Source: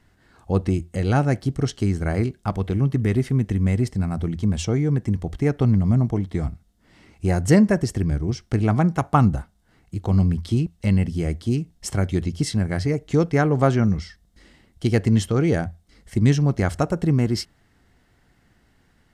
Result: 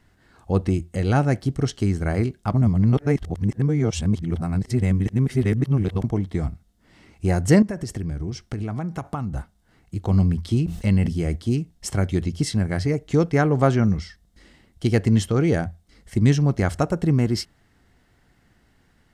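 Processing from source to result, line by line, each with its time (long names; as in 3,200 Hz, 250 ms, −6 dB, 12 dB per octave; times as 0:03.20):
0:02.54–0:06.04: reverse
0:07.62–0:09.36: downward compressor, threshold −24 dBFS
0:10.57–0:11.36: level that may fall only so fast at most 87 dB per second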